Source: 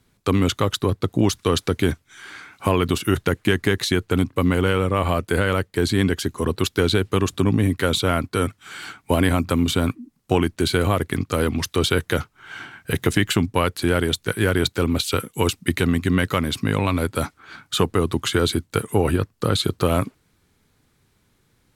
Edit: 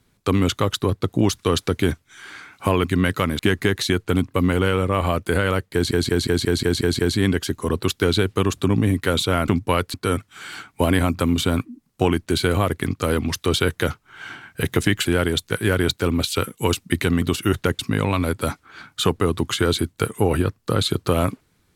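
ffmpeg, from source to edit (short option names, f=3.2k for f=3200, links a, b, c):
-filter_complex "[0:a]asplit=15[a][b][c][d][e][f][g][h][i][j][k][l][m][n][o];[a]atrim=end=2.842[p];[b]atrim=start=15.978:end=16.532[q];[c]atrim=start=3.408:end=5.932[r];[d]atrim=start=5.748:end=5.932[s];[e]atrim=start=5.748:end=5.932[t];[f]atrim=start=5.748:end=5.932[u];[g]atrim=start=5.748:end=5.932[v];[h]atrim=start=5.748:end=5.932[w];[i]atrim=start=5.748:end=5.932[x];[j]atrim=start=5.748:end=8.242[y];[k]atrim=start=13.348:end=13.812[z];[l]atrim=start=8.238:end=13.352[aa];[m]atrim=start=13.808:end=15.982[ab];[n]atrim=start=2.838:end=3.412[ac];[o]atrim=start=16.528[ad];[p][q]acrossfade=d=0.004:c1=hsin:c2=hsin[ae];[ae][r]acrossfade=d=0.004:c1=hsin:c2=hsin[af];[af][s]acrossfade=d=0.004:c1=hsin:c2=hsin[ag];[ag][t]acrossfade=d=0.004:c1=hsin:c2=hsin[ah];[ah][u]acrossfade=d=0.004:c1=hsin:c2=hsin[ai];[ai][v]acrossfade=d=0.004:c1=hsin:c2=hsin[aj];[aj][w]acrossfade=d=0.004:c1=hsin:c2=hsin[ak];[ak][x]acrossfade=d=0.004:c1=hsin:c2=hsin[al];[al][y]acrossfade=d=0.004:c1=hsin:c2=hsin[am];[am][z]acrossfade=d=0.004:c1=hsin:c2=hsin[an];[an][aa]acrossfade=d=0.004:c1=hsin:c2=hsin[ao];[ao][ab]acrossfade=d=0.004:c1=hsin:c2=hsin[ap];[ap][ac]acrossfade=d=0.004:c1=hsin:c2=hsin[aq];[aq][ad]acrossfade=d=0.004:c1=hsin:c2=hsin"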